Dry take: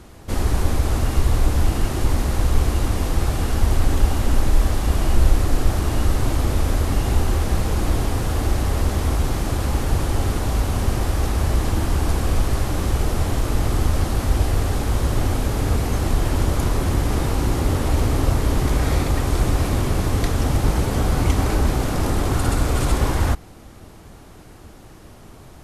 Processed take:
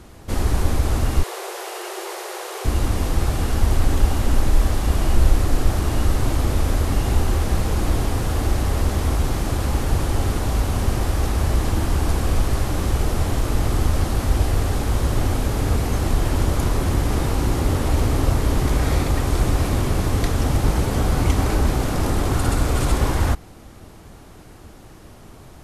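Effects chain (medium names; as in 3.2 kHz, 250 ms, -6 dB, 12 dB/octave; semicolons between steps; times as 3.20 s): 1.23–2.65 s: Chebyshev high-pass 350 Hz, order 10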